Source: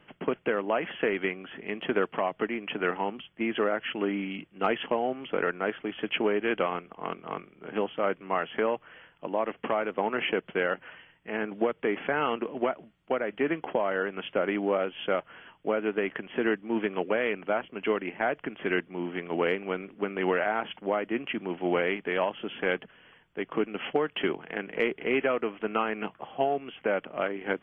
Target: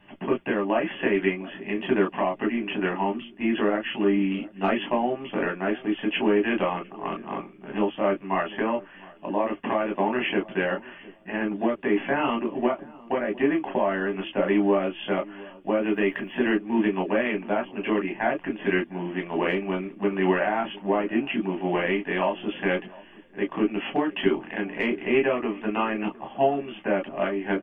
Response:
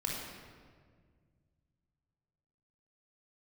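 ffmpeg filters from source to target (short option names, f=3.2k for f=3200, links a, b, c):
-filter_complex "[0:a]asettb=1/sr,asplit=3[a][b][c];[a]atrim=end=15.824[d];[b]atrim=start=15.82:end=16.54,asetpts=PTS-STARTPTS,afade=t=in:d=0.004:c=qsin,afade=t=out:st=0.716:d=0.004:c=qsin,aemphasis=mode=production:type=50fm[e];[c]atrim=start=16.536[f];[d][e]acrossfade=d=0.004:c1=hsin:c2=qsin[g];[g][f]acrossfade=d=0.004:c1=qsin:c2=hsin,asplit=2[h][i];[i]adelay=705,lowpass=f=1k:p=1,volume=-20dB,asplit=2[j][k];[k]adelay=705,lowpass=f=1k:p=1,volume=0.26[l];[h][j][l]amix=inputs=3:normalize=0[m];[1:a]atrim=start_sample=2205,afade=t=out:st=0.13:d=0.01,atrim=end_sample=6174,asetrate=88200,aresample=44100[n];[m][n]afir=irnorm=-1:irlink=0,volume=7dB"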